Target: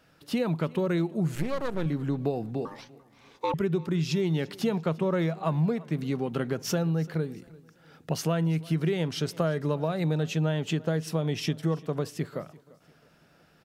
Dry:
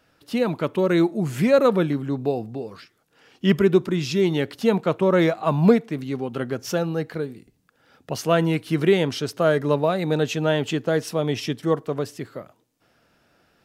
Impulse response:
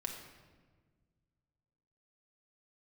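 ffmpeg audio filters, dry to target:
-filter_complex "[0:a]equalizer=frequency=160:width_type=o:width=0.23:gain=11,acompressor=threshold=-24dB:ratio=6,asettb=1/sr,asplit=3[link_01][link_02][link_03];[link_01]atrim=end=1.354[link_04];[link_02]atrim=start=1.35:end=1.86,asetpts=PTS-STARTPTS,afade=type=in:duration=0.004:curve=qsin,afade=type=out:start_time=0.506:duration=0.004:curve=qsin,aeval=exprs='max(val(0),0)':channel_layout=same[link_05];[link_03]atrim=start=1.856[link_06];[link_04][link_05]acrossfade=duration=0.004:curve1=hsin:curve2=qsin[link_07];[link_07][link_06]acrossfade=duration=0.004:curve1=qsin:curve2=hsin,asettb=1/sr,asplit=3[link_08][link_09][link_10];[link_08]atrim=end=2.654[link_11];[link_09]atrim=start=2.65:end=3.54,asetpts=PTS-STARTPTS,afade=type=in:duration=0.004:curve=qsin,afade=type=out:start_time=0.886:duration=0.004:curve=qsin,aeval=exprs='val(0)*sin(2*PI*700*n/s)':channel_layout=same[link_12];[link_10]atrim=start=3.536[link_13];[link_11][link_12]acrossfade=duration=0.004:curve1=hsin:curve2=qsin[link_14];[link_14][link_13]acrossfade=duration=0.004:curve1=qsin:curve2=hsin,aecho=1:1:343|686|1029:0.0794|0.0318|0.0127"

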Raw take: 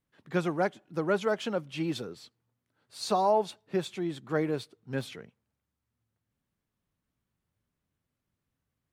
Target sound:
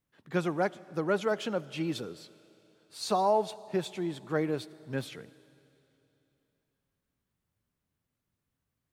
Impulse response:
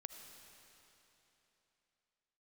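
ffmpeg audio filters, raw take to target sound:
-filter_complex "[0:a]asplit=2[link_01][link_02];[1:a]atrim=start_sample=2205,highshelf=frequency=7000:gain=10.5[link_03];[link_02][link_03]afir=irnorm=-1:irlink=0,volume=-8dB[link_04];[link_01][link_04]amix=inputs=2:normalize=0,volume=-2.5dB"

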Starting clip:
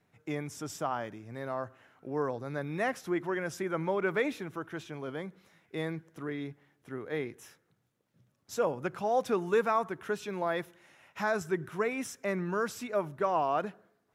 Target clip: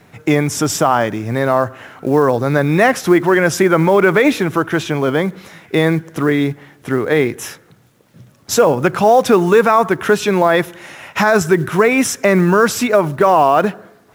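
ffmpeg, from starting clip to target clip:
ffmpeg -i in.wav -filter_complex "[0:a]asplit=2[link_01][link_02];[link_02]acompressor=threshold=-41dB:ratio=16,volume=-2.5dB[link_03];[link_01][link_03]amix=inputs=2:normalize=0,acrusher=bits=8:mode=log:mix=0:aa=0.000001,alimiter=level_in=21dB:limit=-1dB:release=50:level=0:latency=1,volume=-1dB" out.wav

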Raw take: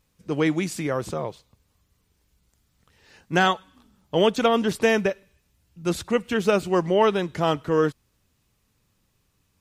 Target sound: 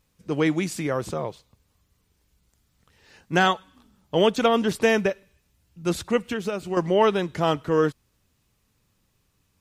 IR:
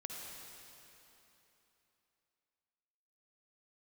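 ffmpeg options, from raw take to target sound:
-filter_complex "[0:a]asettb=1/sr,asplit=3[link_01][link_02][link_03];[link_01]atrim=end=6.254[link_04];[link_02]atrim=start=6.25:end=6.77,asetpts=PTS-STARTPTS,afade=type=in:duration=0.004:curve=qsin,afade=type=out:start_time=0.516:duration=0.004:curve=qsin,acompressor=threshold=-25dB:ratio=6[link_05];[link_03]atrim=start=6.766[link_06];[link_04][link_05]acrossfade=duration=0.004:curve1=hsin:curve2=qsin[link_07];[link_07][link_06]acrossfade=duration=0.004:curve1=qsin:curve2=hsin"

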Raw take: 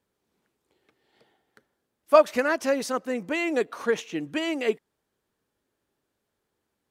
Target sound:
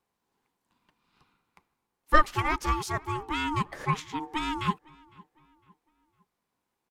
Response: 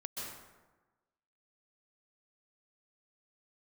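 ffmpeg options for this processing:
-filter_complex "[0:a]aeval=exprs='val(0)*sin(2*PI*610*n/s)':channel_layout=same,asplit=2[link_01][link_02];[link_02]adelay=506,lowpass=frequency=3000:poles=1,volume=-24dB,asplit=2[link_03][link_04];[link_04]adelay=506,lowpass=frequency=3000:poles=1,volume=0.41,asplit=2[link_05][link_06];[link_06]adelay=506,lowpass=frequency=3000:poles=1,volume=0.41[link_07];[link_01][link_03][link_05][link_07]amix=inputs=4:normalize=0"

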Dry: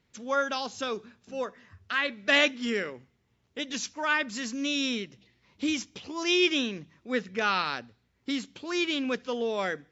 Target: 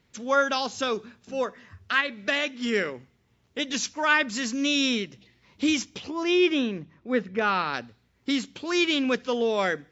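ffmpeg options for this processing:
ffmpeg -i in.wav -filter_complex "[0:a]asplit=3[link_01][link_02][link_03];[link_01]afade=type=out:start_time=2:duration=0.02[link_04];[link_02]acompressor=threshold=-30dB:ratio=3,afade=type=in:start_time=2:duration=0.02,afade=type=out:start_time=2.72:duration=0.02[link_05];[link_03]afade=type=in:start_time=2.72:duration=0.02[link_06];[link_04][link_05][link_06]amix=inputs=3:normalize=0,asplit=3[link_07][link_08][link_09];[link_07]afade=type=out:start_time=6.09:duration=0.02[link_10];[link_08]lowpass=frequency=1400:poles=1,afade=type=in:start_time=6.09:duration=0.02,afade=type=out:start_time=7.73:duration=0.02[link_11];[link_09]afade=type=in:start_time=7.73:duration=0.02[link_12];[link_10][link_11][link_12]amix=inputs=3:normalize=0,volume=5dB" out.wav

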